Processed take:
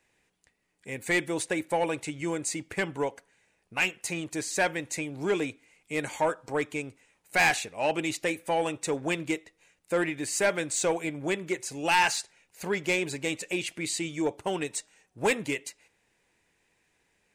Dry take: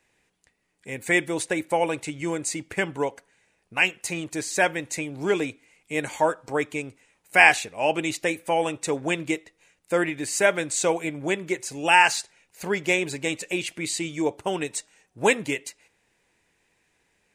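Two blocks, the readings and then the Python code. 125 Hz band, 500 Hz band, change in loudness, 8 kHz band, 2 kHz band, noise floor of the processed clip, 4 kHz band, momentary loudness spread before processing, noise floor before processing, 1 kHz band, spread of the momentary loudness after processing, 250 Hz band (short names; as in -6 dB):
-2.5 dB, -4.0 dB, -5.0 dB, -3.0 dB, -6.0 dB, -73 dBFS, -4.0 dB, 12 LU, -71 dBFS, -5.5 dB, 9 LU, -3.0 dB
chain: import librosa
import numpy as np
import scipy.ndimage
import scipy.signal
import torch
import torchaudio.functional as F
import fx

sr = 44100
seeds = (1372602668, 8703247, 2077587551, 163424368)

y = 10.0 ** (-14.5 / 20.0) * np.tanh(x / 10.0 ** (-14.5 / 20.0))
y = y * librosa.db_to_amplitude(-2.5)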